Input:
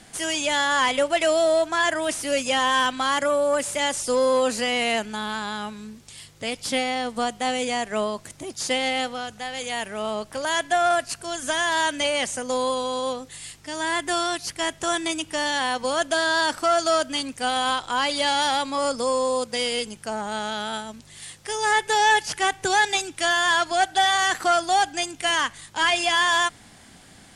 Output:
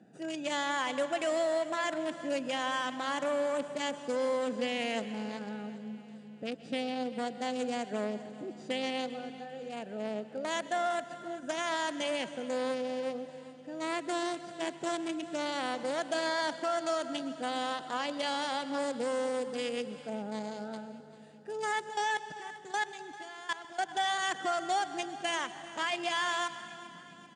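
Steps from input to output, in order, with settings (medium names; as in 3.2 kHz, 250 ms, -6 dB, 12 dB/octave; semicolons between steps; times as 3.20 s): local Wiener filter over 41 samples; elliptic band-pass 160–8400 Hz, stop band 40 dB; 21.89–23.83 s: level held to a coarse grid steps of 22 dB; peak limiter -20 dBFS, peak gain reduction 9 dB; feedback delay 393 ms, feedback 55%, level -17.5 dB; reverberation RT60 2.3 s, pre-delay 115 ms, DRR 13 dB; trim -3 dB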